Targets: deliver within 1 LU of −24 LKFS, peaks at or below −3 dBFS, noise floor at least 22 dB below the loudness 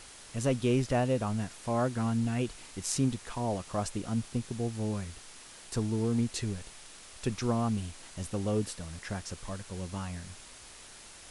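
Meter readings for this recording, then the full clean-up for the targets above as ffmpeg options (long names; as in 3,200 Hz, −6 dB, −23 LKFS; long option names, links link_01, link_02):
background noise floor −51 dBFS; target noise floor −55 dBFS; integrated loudness −33.0 LKFS; sample peak −12.5 dBFS; target loudness −24.0 LKFS
→ -af "afftdn=noise_reduction=6:noise_floor=-51"
-af "volume=9dB"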